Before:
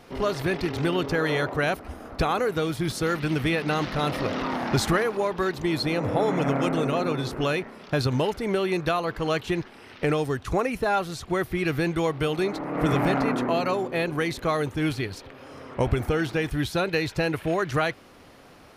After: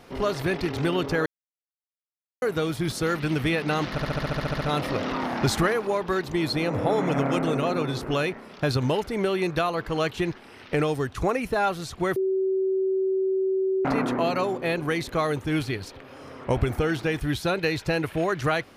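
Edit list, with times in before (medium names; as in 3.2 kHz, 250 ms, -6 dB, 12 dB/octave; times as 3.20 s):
1.26–2.42 s: mute
3.91 s: stutter 0.07 s, 11 plays
11.46–13.15 s: bleep 381 Hz -21 dBFS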